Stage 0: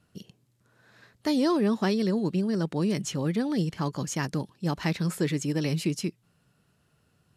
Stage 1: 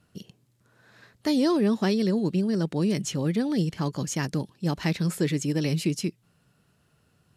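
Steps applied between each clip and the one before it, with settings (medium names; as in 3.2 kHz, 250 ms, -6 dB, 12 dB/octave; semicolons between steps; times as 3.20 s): dynamic bell 1.1 kHz, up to -4 dB, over -47 dBFS, Q 1.1; trim +2 dB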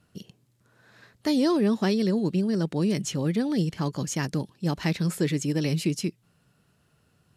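no audible change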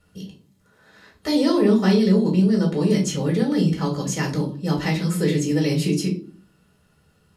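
reverberation RT60 0.45 s, pre-delay 4 ms, DRR -1.5 dB; trim -1.5 dB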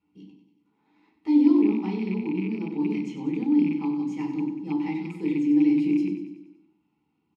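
rattle on loud lows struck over -18 dBFS, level -19 dBFS; vowel filter u; on a send: feedback delay 95 ms, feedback 55%, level -10 dB; on the sum: trim +2.5 dB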